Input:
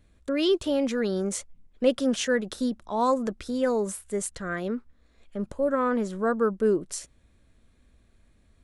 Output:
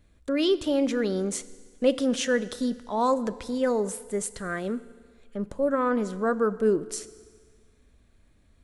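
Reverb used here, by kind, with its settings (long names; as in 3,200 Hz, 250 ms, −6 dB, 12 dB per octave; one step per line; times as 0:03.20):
feedback delay network reverb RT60 1.7 s, low-frequency decay 0.9×, high-frequency decay 0.95×, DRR 15 dB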